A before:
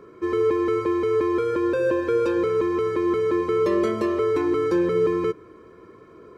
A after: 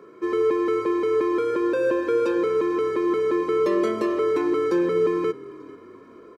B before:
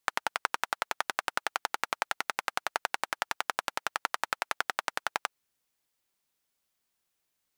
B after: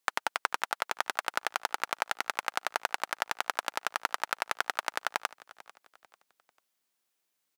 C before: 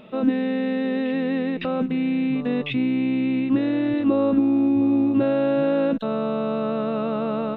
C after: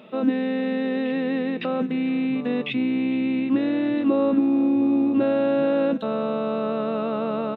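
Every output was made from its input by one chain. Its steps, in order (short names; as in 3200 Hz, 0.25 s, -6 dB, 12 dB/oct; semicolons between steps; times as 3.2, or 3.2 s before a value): HPF 190 Hz 12 dB/oct; frequency-shifting echo 0.444 s, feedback 37%, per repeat -37 Hz, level -20 dB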